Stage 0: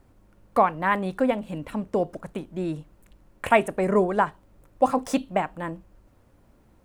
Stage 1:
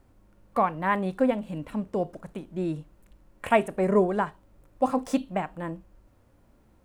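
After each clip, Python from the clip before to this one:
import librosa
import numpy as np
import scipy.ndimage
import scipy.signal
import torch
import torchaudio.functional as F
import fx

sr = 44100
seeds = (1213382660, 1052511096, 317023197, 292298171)

y = fx.hpss(x, sr, part='percussive', gain_db=-6)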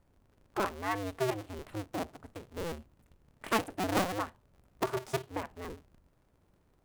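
y = fx.cycle_switch(x, sr, every=2, mode='inverted')
y = y * 10.0 ** (-8.5 / 20.0)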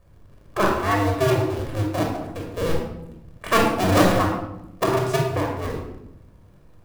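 y = fx.room_shoebox(x, sr, seeds[0], volume_m3=2700.0, walls='furnished', distance_m=5.7)
y = y * 10.0 ** (7.0 / 20.0)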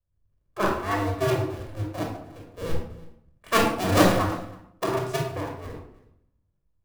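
y = x + 10.0 ** (-15.0 / 20.0) * np.pad(x, (int(325 * sr / 1000.0), 0))[:len(x)]
y = fx.band_widen(y, sr, depth_pct=70)
y = y * 10.0 ** (-5.5 / 20.0)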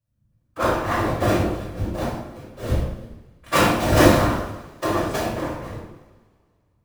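y = fx.whisperise(x, sr, seeds[1])
y = fx.rev_double_slope(y, sr, seeds[2], early_s=0.55, late_s=2.3, knee_db=-22, drr_db=-3.5)
y = y * 10.0 ** (-1.0 / 20.0)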